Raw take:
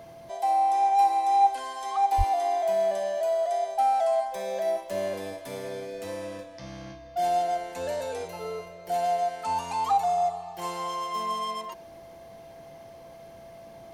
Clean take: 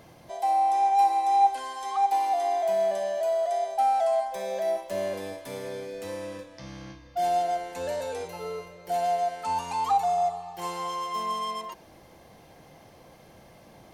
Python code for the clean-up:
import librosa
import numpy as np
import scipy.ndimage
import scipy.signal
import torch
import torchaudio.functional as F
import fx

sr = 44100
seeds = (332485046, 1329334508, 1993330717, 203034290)

y = fx.notch(x, sr, hz=670.0, q=30.0)
y = fx.fix_deplosive(y, sr, at_s=(2.17,))